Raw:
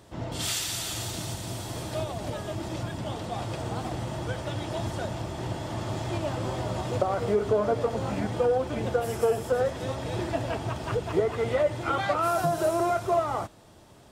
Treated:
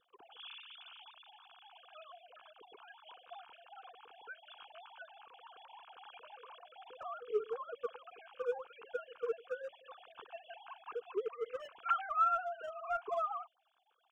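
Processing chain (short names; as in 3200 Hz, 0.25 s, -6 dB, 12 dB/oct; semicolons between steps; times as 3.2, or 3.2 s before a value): sine-wave speech; in parallel at -10.5 dB: overloaded stage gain 21 dB; on the sum: fixed phaser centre 2900 Hz, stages 8; gain -6 dB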